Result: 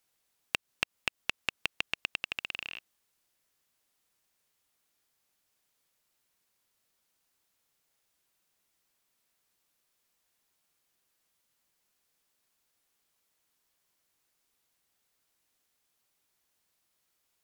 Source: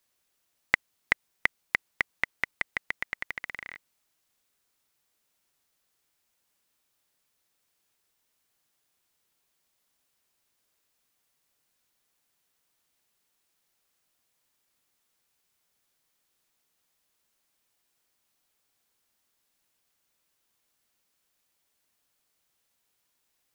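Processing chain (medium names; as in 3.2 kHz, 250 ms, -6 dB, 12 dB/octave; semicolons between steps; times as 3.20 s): compression 5:1, threshold -26 dBFS, peak gain reduction 10 dB; speed mistake 33 rpm record played at 45 rpm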